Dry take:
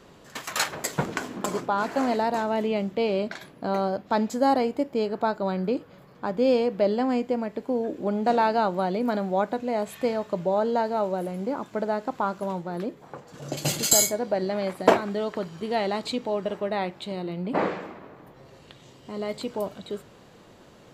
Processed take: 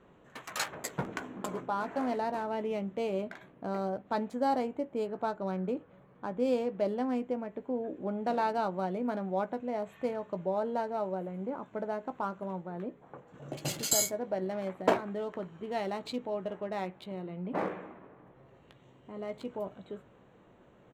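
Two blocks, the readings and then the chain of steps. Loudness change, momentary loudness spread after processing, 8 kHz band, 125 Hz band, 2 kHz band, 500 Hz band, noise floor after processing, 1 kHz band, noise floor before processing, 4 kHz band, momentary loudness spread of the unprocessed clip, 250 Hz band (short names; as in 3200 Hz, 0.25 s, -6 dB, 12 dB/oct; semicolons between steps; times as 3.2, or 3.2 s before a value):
-8.0 dB, 11 LU, -8.5 dB, -7.0 dB, -8.5 dB, -8.0 dB, -60 dBFS, -8.0 dB, -52 dBFS, -9.0 dB, 11 LU, -7.5 dB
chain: Wiener smoothing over 9 samples; doubler 16 ms -11.5 dB; gain -8 dB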